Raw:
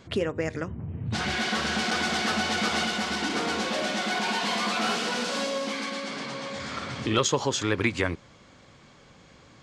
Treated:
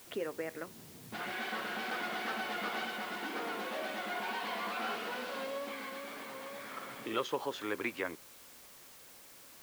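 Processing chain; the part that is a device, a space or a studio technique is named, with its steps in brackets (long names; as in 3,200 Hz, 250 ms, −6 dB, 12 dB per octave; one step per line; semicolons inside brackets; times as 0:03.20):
wax cylinder (band-pass filter 310–2,700 Hz; tape wow and flutter; white noise bed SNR 16 dB)
level −8.5 dB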